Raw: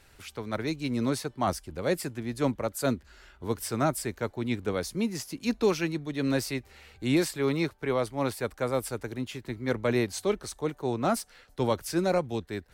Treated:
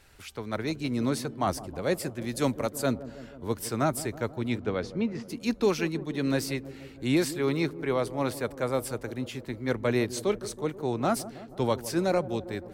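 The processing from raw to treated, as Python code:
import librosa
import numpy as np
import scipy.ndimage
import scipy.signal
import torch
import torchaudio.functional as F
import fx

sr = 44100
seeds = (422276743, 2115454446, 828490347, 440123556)

y = fx.high_shelf(x, sr, hz=3300.0, db=10.0, at=(2.21, 2.7))
y = fx.lowpass(y, sr, hz=fx.line((4.57, 5100.0), (5.28, 2100.0)), slope=12, at=(4.57, 5.28), fade=0.02)
y = fx.echo_wet_lowpass(y, sr, ms=160, feedback_pct=67, hz=760.0, wet_db=-14.0)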